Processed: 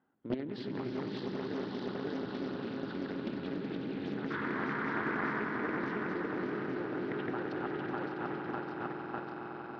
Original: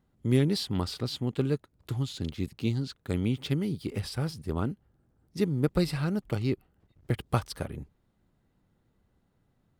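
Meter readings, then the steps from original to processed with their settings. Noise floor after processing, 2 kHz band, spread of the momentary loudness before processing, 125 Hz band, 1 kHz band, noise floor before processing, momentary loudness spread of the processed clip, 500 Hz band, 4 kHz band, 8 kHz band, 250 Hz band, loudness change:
-43 dBFS, +6.5 dB, 9 LU, -15.0 dB, +3.5 dB, -72 dBFS, 5 LU, -3.0 dB, -11.5 dB, under -20 dB, -4.5 dB, -6.0 dB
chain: regenerating reverse delay 0.3 s, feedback 78%, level -2 dB; limiter -17.5 dBFS, peak gain reduction 7.5 dB; level quantiser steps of 12 dB; painted sound noise, 4.3–5.42, 890–2100 Hz -43 dBFS; speaker cabinet 280–2800 Hz, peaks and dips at 280 Hz +5 dB, 550 Hz -3 dB, 840 Hz +5 dB, 1500 Hz +8 dB, 2200 Hz -5 dB; swelling echo 93 ms, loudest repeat 5, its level -9.5 dB; Doppler distortion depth 0.46 ms

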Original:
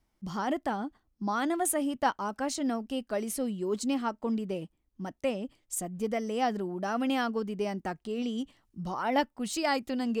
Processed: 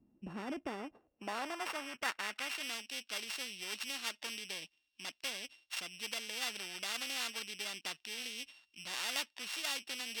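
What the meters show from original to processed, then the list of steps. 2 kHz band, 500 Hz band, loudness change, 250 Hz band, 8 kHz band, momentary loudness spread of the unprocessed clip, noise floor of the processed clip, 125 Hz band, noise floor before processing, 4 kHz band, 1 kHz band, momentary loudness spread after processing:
-1.5 dB, -17.0 dB, -8.0 dB, -19.0 dB, -4.5 dB, 9 LU, -80 dBFS, -17.5 dB, -75 dBFS, +3.5 dB, -13.5 dB, 8 LU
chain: sample sorter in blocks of 16 samples; band-pass sweep 240 Hz -> 3600 Hz, 0.37–2.77; spectral compressor 2:1; gain +1.5 dB

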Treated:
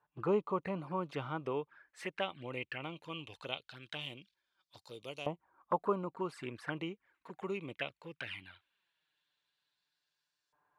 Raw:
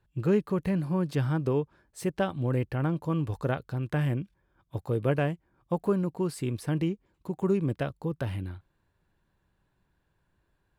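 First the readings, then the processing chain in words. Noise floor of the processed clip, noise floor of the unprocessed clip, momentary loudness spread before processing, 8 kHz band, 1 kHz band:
under -85 dBFS, -75 dBFS, 12 LU, -14.0 dB, -2.5 dB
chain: envelope flanger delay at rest 6.9 ms, full sweep at -25.5 dBFS; LFO band-pass saw up 0.19 Hz 960–5400 Hz; gain +10.5 dB

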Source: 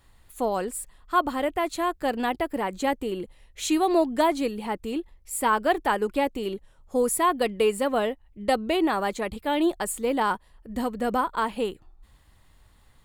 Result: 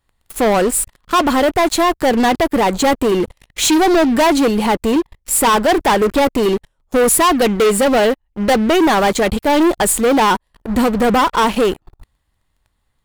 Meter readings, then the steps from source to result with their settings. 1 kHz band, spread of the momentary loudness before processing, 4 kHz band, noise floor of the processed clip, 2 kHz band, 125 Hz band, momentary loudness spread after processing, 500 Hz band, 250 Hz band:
+10.5 dB, 10 LU, +14.0 dB, -68 dBFS, +11.5 dB, n/a, 6 LU, +11.5 dB, +12.5 dB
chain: sample leveller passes 5

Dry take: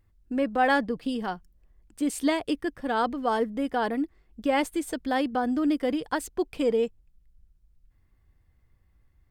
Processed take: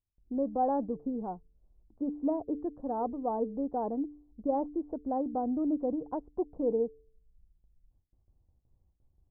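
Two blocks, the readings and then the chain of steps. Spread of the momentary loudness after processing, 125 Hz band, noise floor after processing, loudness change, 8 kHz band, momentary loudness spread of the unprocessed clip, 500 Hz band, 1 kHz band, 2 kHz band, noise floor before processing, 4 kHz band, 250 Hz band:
7 LU, n/a, -75 dBFS, -5.5 dB, under -35 dB, 8 LU, -4.5 dB, -6.0 dB, under -35 dB, -65 dBFS, under -40 dB, -5.0 dB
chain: gate with hold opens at -54 dBFS; steep low-pass 900 Hz 36 dB/oct; de-hum 147.4 Hz, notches 3; gain -4.5 dB

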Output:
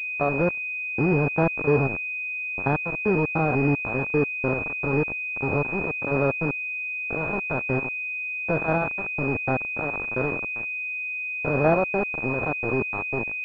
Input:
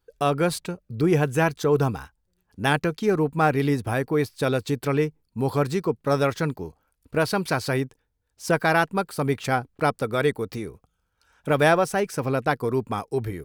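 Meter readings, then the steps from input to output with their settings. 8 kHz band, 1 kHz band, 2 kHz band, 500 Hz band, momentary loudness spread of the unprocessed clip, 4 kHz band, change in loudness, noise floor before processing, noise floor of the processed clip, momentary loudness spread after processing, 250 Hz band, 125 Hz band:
under -25 dB, -4.0 dB, +4.0 dB, -2.5 dB, 9 LU, under -20 dB, -0.5 dB, -74 dBFS, -31 dBFS, 6 LU, -1.5 dB, -2.0 dB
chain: stepped spectrum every 0.1 s; sample gate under -24.5 dBFS; pulse-width modulation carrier 2500 Hz; gain +1.5 dB

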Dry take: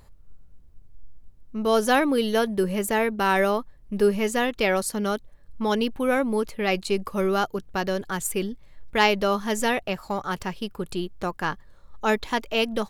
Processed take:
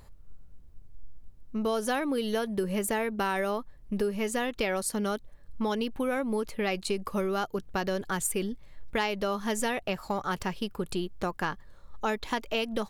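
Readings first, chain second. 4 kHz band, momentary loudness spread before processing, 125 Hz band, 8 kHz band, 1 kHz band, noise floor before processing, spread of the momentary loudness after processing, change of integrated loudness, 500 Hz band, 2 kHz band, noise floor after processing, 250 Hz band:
-6.5 dB, 10 LU, -4.5 dB, -2.0 dB, -6.5 dB, -49 dBFS, 5 LU, -6.0 dB, -6.5 dB, -7.0 dB, -50 dBFS, -5.0 dB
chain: dynamic EQ 9100 Hz, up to +6 dB, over -54 dBFS, Q 7; compressor, threshold -26 dBFS, peak gain reduction 11.5 dB

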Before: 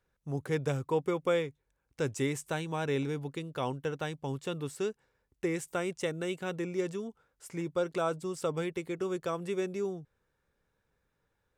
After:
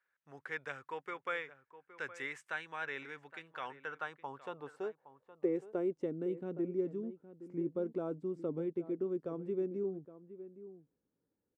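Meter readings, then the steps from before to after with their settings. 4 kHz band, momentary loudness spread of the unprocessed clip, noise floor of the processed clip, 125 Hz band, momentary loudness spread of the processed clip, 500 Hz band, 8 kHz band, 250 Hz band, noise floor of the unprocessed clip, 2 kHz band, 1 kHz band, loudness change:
-11.5 dB, 7 LU, under -85 dBFS, -12.5 dB, 15 LU, -5.5 dB, under -20 dB, -4.0 dB, -80 dBFS, -1.5 dB, -6.5 dB, -5.5 dB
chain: band-pass sweep 1700 Hz -> 280 Hz, 3.66–6.14; outdoor echo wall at 140 m, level -14 dB; gain +3 dB

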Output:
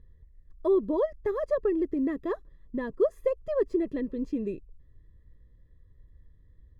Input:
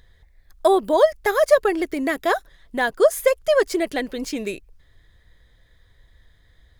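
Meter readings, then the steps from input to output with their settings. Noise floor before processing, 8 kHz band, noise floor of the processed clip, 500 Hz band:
-57 dBFS, under -30 dB, -58 dBFS, -9.0 dB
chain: running mean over 59 samples

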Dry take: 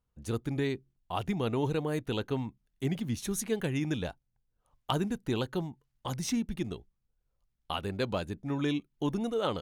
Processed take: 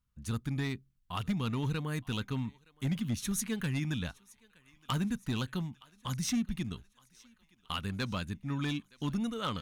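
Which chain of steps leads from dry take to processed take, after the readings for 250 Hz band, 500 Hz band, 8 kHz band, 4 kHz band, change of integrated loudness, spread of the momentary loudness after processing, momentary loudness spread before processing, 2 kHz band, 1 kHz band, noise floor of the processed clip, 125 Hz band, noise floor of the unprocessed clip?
-1.5 dB, -11.0 dB, +1.0 dB, 0.0 dB, -2.0 dB, 7 LU, 8 LU, 0.0 dB, -3.5 dB, -70 dBFS, +0.5 dB, -80 dBFS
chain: band shelf 520 Hz -11.5 dB; thinning echo 0.918 s, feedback 62%, high-pass 590 Hz, level -23.5 dB; hard clip -26.5 dBFS, distortion -19 dB; gain +1 dB

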